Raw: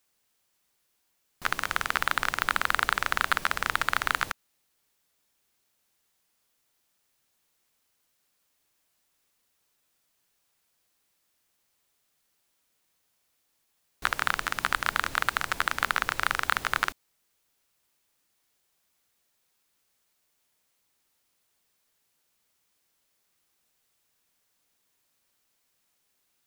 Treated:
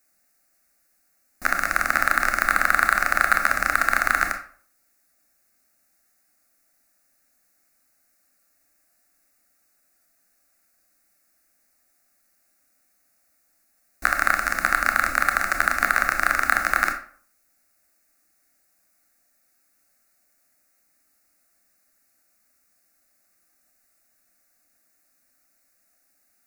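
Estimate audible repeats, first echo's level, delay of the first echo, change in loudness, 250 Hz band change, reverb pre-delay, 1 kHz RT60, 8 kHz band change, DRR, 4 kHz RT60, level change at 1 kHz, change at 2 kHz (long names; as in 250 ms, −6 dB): no echo audible, no echo audible, no echo audible, +6.5 dB, +7.5 dB, 24 ms, 0.50 s, +6.5 dB, 4.5 dB, 0.35 s, +6.0 dB, +8.0 dB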